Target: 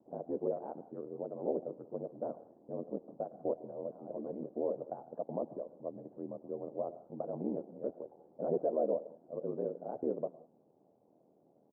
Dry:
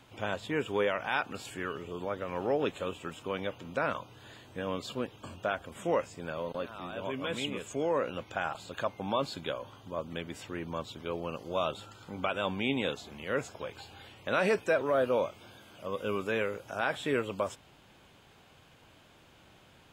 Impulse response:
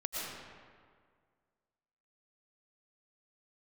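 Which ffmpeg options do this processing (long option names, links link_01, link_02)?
-filter_complex "[0:a]asuperpass=centerf=370:order=8:qfactor=0.69,atempo=1.7,asplit=2[link_01][link_02];[1:a]atrim=start_sample=2205,afade=type=out:start_time=0.27:duration=0.01,atrim=end_sample=12348,asetrate=48510,aresample=44100[link_03];[link_02][link_03]afir=irnorm=-1:irlink=0,volume=-14.5dB[link_04];[link_01][link_04]amix=inputs=2:normalize=0,aeval=exprs='val(0)*sin(2*PI*40*n/s)':channel_layout=same,volume=-1.5dB"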